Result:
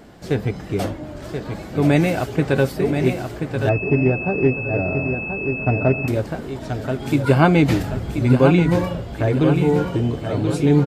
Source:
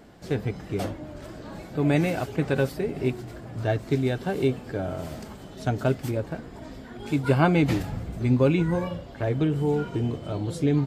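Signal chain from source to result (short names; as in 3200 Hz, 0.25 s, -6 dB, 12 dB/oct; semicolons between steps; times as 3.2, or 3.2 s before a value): feedback echo 1.031 s, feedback 44%, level -7 dB; 3.69–6.08 pulse-width modulation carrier 2600 Hz; gain +6 dB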